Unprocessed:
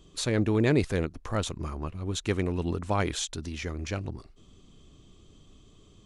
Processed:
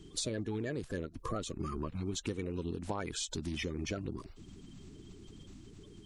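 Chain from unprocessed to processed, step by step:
spectral magnitudes quantised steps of 30 dB
downward compressor 16 to 1, threshold −36 dBFS, peak gain reduction 18 dB
level +3 dB

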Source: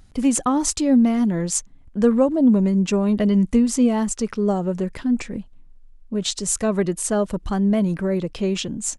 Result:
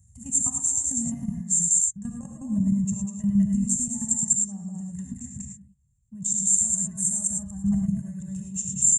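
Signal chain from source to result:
high-pass filter 68 Hz 24 dB per octave
comb filter 1.1 ms, depth 94%
single-tap delay 196 ms −4 dB
output level in coarse steps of 14 dB
drawn EQ curve 140 Hz 0 dB, 210 Hz −10 dB, 310 Hz −30 dB, 680 Hz −25 dB, 1,100 Hz −26 dB, 1,600 Hz −23 dB, 3,300 Hz −29 dB, 4,900 Hz −28 dB, 7,300 Hz +13 dB, 10,000 Hz −6 dB
reverb whose tail is shaped and stops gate 130 ms rising, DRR 2 dB

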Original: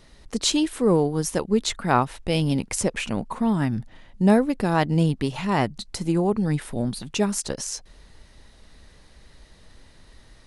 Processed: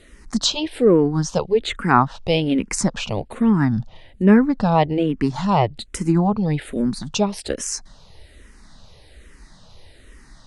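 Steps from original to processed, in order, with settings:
treble cut that deepens with the level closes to 2,800 Hz, closed at −16.5 dBFS
frequency shifter mixed with the dry sound −1.2 Hz
level +7 dB

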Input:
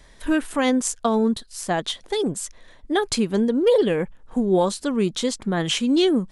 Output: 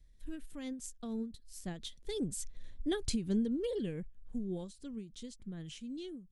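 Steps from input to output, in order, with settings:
source passing by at 0:02.70, 6 m/s, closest 3.2 metres
guitar amp tone stack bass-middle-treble 10-0-1
every ending faded ahead of time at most 140 dB per second
level +11.5 dB

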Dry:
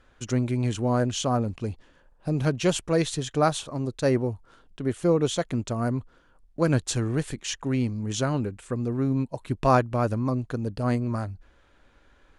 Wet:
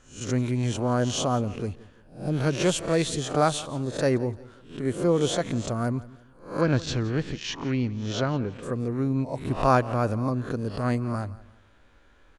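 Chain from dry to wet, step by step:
peak hold with a rise ahead of every peak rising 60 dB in 0.41 s
0:06.61–0:08.63: low-pass filter 5,200 Hz 24 dB per octave
repeating echo 171 ms, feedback 34%, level −19.5 dB
level −1 dB

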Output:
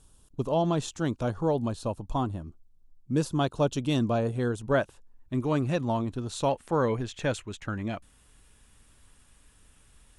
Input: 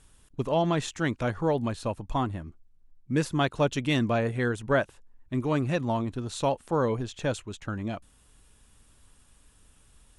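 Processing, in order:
parametric band 2,000 Hz −13.5 dB 0.78 octaves, from 0:04.74 −4.5 dB, from 0:06.49 +3.5 dB

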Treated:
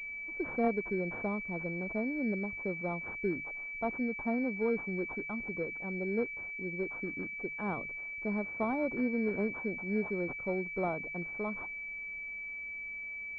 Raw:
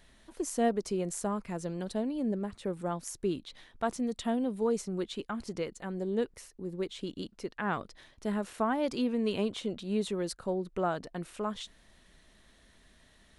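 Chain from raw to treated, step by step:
mains-hum notches 50/100/150 Hz
switching amplifier with a slow clock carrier 2,300 Hz
level −2 dB

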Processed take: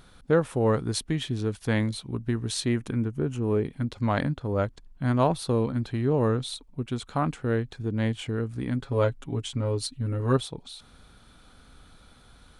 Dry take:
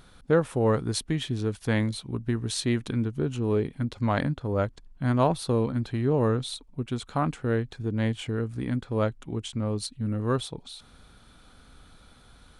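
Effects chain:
0:02.68–0:03.65: parametric band 3,900 Hz −9.5 dB 0.69 octaves
0:08.79–0:10.37: comb filter 7.3 ms, depth 70%

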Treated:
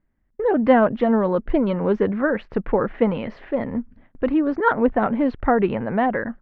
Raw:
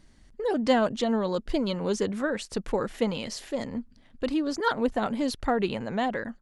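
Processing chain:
noise gate with hold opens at −44 dBFS
low-pass filter 2,100 Hz 24 dB per octave
level +7.5 dB

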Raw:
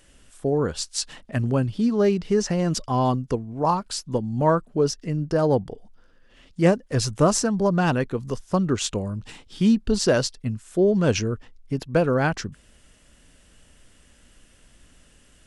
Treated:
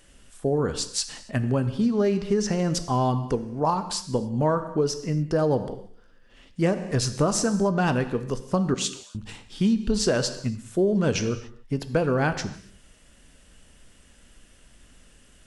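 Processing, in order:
0:08.74–0:09.15: Chebyshev high-pass filter 2,700 Hz, order 2
reverb whose tail is shaped and stops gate 310 ms falling, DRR 10 dB
downward compressor 5 to 1, threshold −18 dBFS, peak gain reduction 6 dB

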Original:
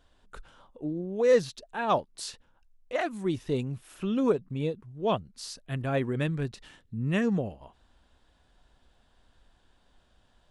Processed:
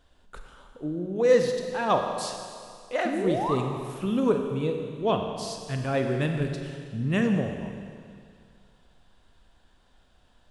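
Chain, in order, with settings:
sound drawn into the spectrogram rise, 0:03.05–0:03.55, 220–1,300 Hz −31 dBFS
four-comb reverb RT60 2.2 s, combs from 31 ms, DRR 4 dB
level +1.5 dB

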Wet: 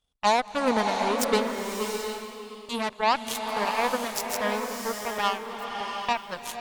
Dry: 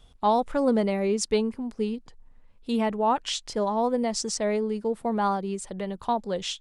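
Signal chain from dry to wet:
harmonic generator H 6 −20 dB, 7 −16 dB, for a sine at −11.5 dBFS
spectral tilt +1.5 dB per octave
slow-attack reverb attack 720 ms, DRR 3 dB

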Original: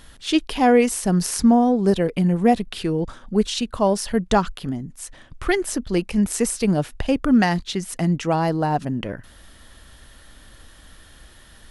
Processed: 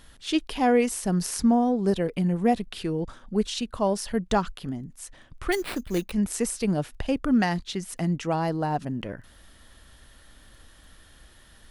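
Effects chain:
surface crackle 10 per second −47 dBFS
0:05.52–0:06.12: sample-rate reduction 6,500 Hz, jitter 0%
level −5.5 dB

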